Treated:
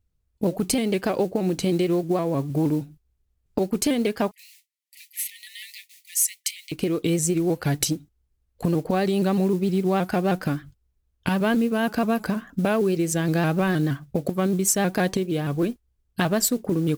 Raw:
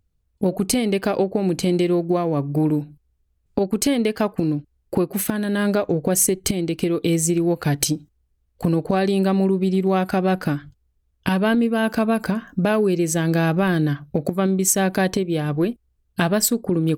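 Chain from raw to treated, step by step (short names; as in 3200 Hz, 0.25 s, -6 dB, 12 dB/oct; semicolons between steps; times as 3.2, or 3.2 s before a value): modulation noise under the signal 28 dB; 4.31–6.72 brick-wall FIR high-pass 1800 Hz; shaped vibrato saw up 6.4 Hz, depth 100 cents; gain -3 dB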